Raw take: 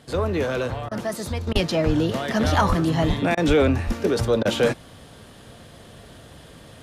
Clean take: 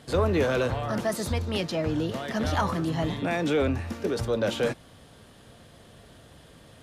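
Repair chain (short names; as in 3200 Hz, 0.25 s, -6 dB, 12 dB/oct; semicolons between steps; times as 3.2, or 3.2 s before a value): de-plosive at 1.53/1.86/2.68/3.07/3.47/3.86; interpolate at 0.89/1.53/3.35/4.43, 22 ms; gain 0 dB, from 1.47 s -6.5 dB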